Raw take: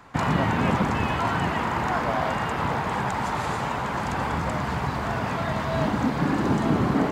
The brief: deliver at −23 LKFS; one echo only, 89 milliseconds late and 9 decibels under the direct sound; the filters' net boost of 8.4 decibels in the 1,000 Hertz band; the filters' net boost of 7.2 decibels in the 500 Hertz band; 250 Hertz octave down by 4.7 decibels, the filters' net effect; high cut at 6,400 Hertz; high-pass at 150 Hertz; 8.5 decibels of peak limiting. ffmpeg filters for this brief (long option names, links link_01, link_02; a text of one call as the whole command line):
ffmpeg -i in.wav -af "highpass=150,lowpass=6400,equalizer=frequency=250:width_type=o:gain=-8,equalizer=frequency=500:width_type=o:gain=8.5,equalizer=frequency=1000:width_type=o:gain=8,alimiter=limit=-14dB:level=0:latency=1,aecho=1:1:89:0.355,volume=-0.5dB" out.wav